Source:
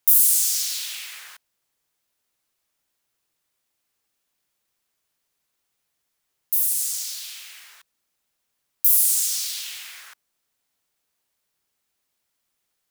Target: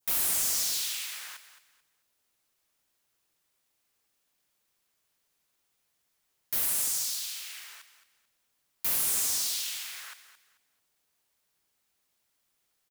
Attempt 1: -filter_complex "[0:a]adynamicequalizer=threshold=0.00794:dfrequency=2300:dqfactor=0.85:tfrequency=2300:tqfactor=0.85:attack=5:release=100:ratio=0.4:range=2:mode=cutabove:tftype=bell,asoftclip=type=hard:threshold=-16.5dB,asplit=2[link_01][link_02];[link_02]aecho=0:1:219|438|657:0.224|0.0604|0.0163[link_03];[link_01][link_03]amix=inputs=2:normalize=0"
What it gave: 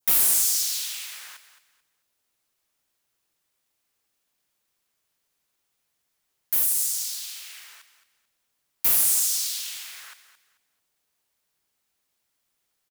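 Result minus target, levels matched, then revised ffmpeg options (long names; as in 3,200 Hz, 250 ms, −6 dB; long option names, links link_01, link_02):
hard clipping: distortion −6 dB
-filter_complex "[0:a]adynamicequalizer=threshold=0.00794:dfrequency=2300:dqfactor=0.85:tfrequency=2300:tqfactor=0.85:attack=5:release=100:ratio=0.4:range=2:mode=cutabove:tftype=bell,asoftclip=type=hard:threshold=-26.5dB,asplit=2[link_01][link_02];[link_02]aecho=0:1:219|438|657:0.224|0.0604|0.0163[link_03];[link_01][link_03]amix=inputs=2:normalize=0"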